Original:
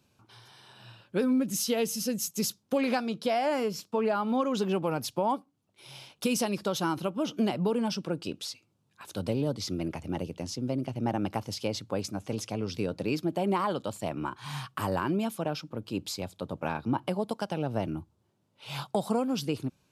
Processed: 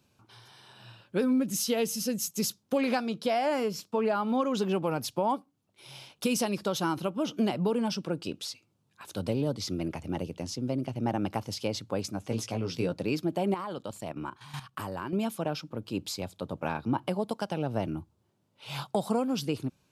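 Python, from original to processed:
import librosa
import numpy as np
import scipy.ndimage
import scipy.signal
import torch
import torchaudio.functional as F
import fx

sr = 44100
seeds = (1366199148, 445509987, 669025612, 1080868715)

y = fx.doubler(x, sr, ms=17.0, db=-5.0, at=(12.29, 12.93))
y = fx.level_steps(y, sr, step_db=12, at=(13.54, 15.13))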